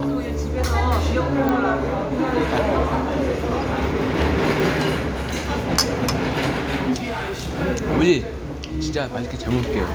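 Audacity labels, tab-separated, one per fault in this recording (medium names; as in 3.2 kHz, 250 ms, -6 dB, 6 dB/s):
1.490000	1.490000	pop -10 dBFS
4.600000	4.600000	pop
7.040000	7.600000	clipped -23.5 dBFS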